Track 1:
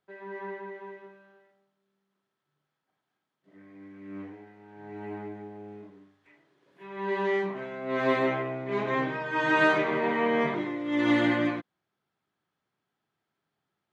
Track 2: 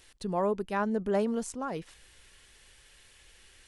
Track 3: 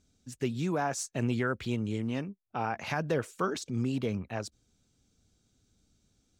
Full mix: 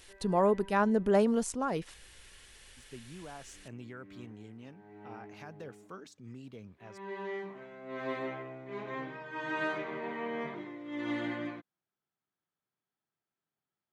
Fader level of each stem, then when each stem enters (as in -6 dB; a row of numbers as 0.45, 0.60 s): -11.5, +2.5, -16.5 dB; 0.00, 0.00, 2.50 s